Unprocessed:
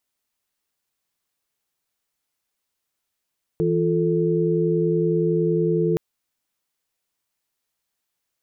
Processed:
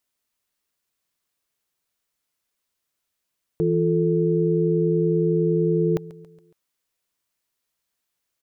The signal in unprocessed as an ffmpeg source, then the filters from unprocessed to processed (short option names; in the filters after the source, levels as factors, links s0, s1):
-f lavfi -i "aevalsrc='0.0794*(sin(2*PI*164.81*t)+sin(2*PI*349.23*t)+sin(2*PI*440*t))':d=2.37:s=44100"
-af "bandreject=f=810:w=12,aecho=1:1:139|278|417|556:0.106|0.0551|0.0286|0.0149"